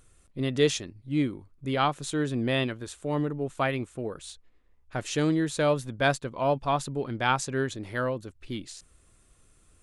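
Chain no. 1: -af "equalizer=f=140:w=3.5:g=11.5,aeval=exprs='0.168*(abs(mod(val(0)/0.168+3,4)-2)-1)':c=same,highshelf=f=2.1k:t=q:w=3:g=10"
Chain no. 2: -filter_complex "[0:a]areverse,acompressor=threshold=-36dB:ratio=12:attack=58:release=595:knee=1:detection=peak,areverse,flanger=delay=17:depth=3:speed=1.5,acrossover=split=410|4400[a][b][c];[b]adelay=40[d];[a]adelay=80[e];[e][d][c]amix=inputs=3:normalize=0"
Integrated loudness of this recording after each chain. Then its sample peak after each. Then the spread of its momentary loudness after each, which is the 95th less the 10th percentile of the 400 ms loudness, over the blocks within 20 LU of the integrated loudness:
-23.0, -44.0 LUFS; -3.5, -24.5 dBFS; 14, 7 LU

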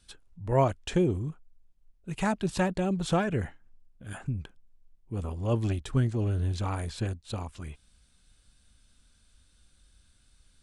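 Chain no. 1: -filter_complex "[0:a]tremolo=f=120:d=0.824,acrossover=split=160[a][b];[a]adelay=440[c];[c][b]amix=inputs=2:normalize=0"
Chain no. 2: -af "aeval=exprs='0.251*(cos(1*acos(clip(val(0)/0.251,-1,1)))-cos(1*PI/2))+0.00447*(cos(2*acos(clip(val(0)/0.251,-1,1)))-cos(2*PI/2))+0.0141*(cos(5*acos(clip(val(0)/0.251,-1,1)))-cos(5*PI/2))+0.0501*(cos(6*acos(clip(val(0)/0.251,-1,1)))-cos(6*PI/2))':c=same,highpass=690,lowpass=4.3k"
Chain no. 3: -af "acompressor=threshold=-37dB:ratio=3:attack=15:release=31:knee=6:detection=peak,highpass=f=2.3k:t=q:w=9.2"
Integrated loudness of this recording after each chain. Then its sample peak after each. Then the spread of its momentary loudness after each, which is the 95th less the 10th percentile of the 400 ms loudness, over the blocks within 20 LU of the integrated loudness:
-36.0, -34.5, -38.5 LUFS; -13.0, -13.5, -17.5 dBFS; 14, 21, 16 LU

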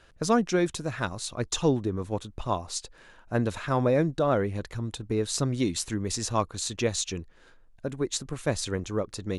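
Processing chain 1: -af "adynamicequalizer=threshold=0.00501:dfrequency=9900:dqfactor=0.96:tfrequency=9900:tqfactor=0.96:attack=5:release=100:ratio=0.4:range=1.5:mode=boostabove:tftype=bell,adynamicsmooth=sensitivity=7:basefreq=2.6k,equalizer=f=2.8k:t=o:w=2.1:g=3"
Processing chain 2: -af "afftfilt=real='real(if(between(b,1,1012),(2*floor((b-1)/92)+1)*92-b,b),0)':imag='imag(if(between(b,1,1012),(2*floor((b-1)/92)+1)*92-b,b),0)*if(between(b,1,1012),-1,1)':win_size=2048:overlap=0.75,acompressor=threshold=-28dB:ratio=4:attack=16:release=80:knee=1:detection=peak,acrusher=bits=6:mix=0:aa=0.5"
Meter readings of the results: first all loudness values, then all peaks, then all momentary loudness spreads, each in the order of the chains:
-28.5, -29.5 LUFS; -10.0, -12.5 dBFS; 10, 6 LU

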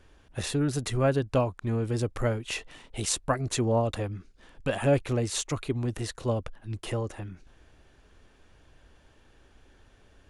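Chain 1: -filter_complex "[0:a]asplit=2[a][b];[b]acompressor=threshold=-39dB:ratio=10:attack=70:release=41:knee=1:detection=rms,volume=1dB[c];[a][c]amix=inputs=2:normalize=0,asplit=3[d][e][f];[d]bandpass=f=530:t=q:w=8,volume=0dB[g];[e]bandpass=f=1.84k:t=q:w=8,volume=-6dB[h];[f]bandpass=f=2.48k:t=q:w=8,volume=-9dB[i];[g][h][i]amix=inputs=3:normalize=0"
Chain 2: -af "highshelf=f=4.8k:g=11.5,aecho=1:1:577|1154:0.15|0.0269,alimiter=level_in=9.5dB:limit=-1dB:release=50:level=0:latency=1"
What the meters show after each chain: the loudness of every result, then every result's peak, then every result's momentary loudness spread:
-36.0, -18.5 LUFS; -18.0, -1.0 dBFS; 17, 13 LU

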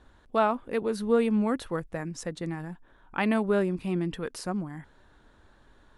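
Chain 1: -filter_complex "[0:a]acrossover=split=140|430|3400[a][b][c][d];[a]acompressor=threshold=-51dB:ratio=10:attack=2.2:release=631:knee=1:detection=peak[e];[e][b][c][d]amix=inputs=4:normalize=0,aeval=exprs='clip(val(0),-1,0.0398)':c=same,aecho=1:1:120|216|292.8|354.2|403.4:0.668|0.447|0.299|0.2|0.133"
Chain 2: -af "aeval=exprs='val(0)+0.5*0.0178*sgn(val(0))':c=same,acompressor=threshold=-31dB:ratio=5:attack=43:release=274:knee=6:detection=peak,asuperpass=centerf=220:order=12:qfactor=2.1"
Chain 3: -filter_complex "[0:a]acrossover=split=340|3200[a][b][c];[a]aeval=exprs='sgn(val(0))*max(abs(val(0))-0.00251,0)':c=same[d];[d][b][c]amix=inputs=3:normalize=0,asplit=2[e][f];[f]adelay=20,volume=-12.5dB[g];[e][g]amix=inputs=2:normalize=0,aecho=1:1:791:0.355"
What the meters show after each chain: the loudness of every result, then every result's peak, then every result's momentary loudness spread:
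-29.0, -38.5, -28.5 LUFS; -11.5, -26.5, -11.5 dBFS; 11, 19, 17 LU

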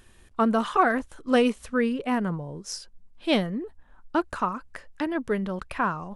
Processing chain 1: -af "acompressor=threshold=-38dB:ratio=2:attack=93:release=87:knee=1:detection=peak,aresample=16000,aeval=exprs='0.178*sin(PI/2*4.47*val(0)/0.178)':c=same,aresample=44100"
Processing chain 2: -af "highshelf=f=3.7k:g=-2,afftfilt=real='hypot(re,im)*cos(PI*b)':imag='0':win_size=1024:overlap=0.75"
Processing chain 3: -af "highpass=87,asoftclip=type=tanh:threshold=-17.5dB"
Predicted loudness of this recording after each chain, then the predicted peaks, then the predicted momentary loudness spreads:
-21.0, -31.5, -29.0 LUFS; -11.0, -10.0, -17.5 dBFS; 7, 13, 11 LU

